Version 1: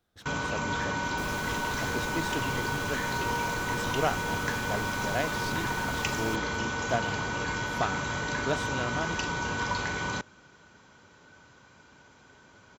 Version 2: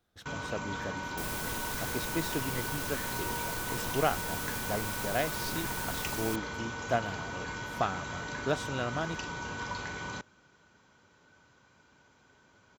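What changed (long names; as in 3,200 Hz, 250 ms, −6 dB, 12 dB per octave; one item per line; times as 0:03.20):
first sound −7.0 dB
second sound: add high-shelf EQ 6,700 Hz +10 dB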